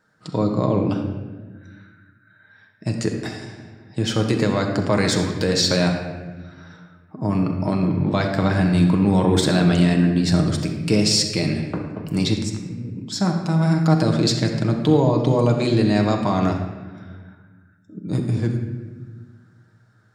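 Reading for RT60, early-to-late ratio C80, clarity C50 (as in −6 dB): 1.3 s, 6.5 dB, 5.0 dB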